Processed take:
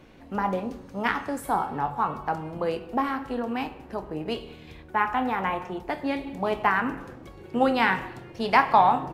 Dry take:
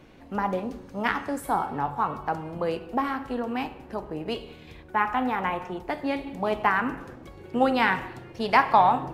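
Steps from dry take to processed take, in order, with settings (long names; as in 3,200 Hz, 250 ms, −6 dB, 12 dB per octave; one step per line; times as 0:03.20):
double-tracking delay 26 ms −13 dB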